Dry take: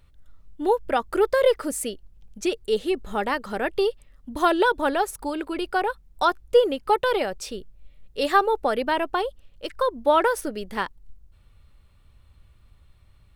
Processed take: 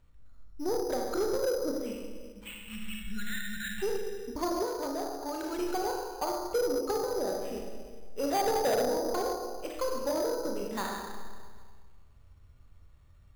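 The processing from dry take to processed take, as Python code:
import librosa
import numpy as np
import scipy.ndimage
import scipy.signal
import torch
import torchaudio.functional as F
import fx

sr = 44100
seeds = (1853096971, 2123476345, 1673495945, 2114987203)

y = fx.spec_erase(x, sr, start_s=1.88, length_s=1.94, low_hz=230.0, high_hz=1400.0)
y = fx.band_shelf(y, sr, hz=630.0, db=13.5, octaves=1.1, at=(8.31, 8.81))
y = fx.env_lowpass_down(y, sr, base_hz=450.0, full_db=-18.0)
y = fx.rev_schroeder(y, sr, rt60_s=1.5, comb_ms=25, drr_db=-1.0)
y = fx.over_compress(y, sr, threshold_db=-25.0, ratio=-1.0, at=(2.81, 3.35), fade=0.02)
y = scipy.signal.sosfilt(scipy.signal.butter(2, 2300.0, 'lowpass', fs=sr, output='sos'), y)
y = fx.echo_feedback(y, sr, ms=400, feedback_pct=34, wet_db=-22.0)
y = 10.0 ** (-17.5 / 20.0) * np.tanh(y / 10.0 ** (-17.5 / 20.0))
y = fx.low_shelf(y, sr, hz=390.0, db=-8.0, at=(4.65, 5.43))
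y = np.repeat(y[::8], 8)[:len(y)]
y = y * librosa.db_to_amplitude(-6.0)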